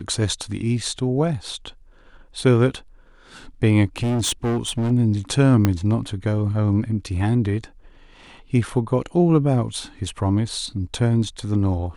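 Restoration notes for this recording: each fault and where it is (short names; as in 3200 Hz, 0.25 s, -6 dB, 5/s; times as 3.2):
3.98–4.92 clipped -18.5 dBFS
5.65 pop -5 dBFS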